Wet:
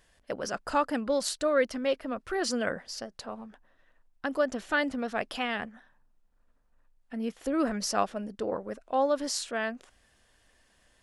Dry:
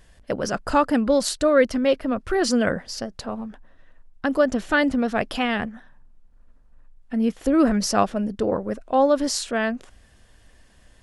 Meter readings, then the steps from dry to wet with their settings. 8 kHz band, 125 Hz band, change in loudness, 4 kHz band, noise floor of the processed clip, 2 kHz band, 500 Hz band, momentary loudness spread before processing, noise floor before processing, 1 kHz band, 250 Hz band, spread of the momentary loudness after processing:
−6.0 dB, −13.0 dB, −8.0 dB, −6.0 dB, −67 dBFS, −6.5 dB, −8.0 dB, 13 LU, −55 dBFS, −7.0 dB, −11.0 dB, 13 LU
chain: low-shelf EQ 260 Hz −10.5 dB
level −6 dB

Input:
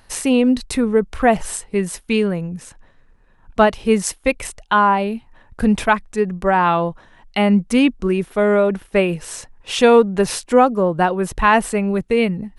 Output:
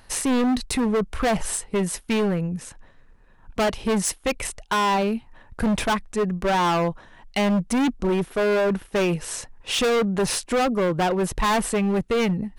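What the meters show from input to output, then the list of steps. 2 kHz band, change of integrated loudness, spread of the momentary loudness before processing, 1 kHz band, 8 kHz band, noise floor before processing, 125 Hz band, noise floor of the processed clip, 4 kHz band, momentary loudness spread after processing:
−6.0 dB, −5.5 dB, 11 LU, −6.5 dB, 0.0 dB, −52 dBFS, −2.5 dB, −52 dBFS, −1.0 dB, 7 LU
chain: gain into a clipping stage and back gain 18.5 dB

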